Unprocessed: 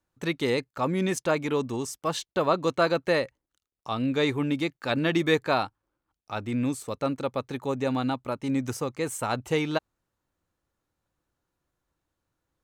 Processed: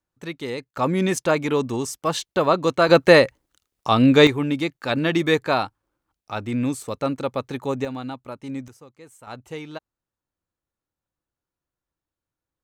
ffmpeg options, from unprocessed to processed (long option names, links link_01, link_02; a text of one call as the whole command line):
ffmpeg -i in.wav -af "asetnsamples=nb_out_samples=441:pad=0,asendcmd='0.74 volume volume 5dB;2.89 volume volume 12dB;4.27 volume volume 3.5dB;7.85 volume volume -4.5dB;8.68 volume volume -16.5dB;9.27 volume volume -8.5dB',volume=-4dB" out.wav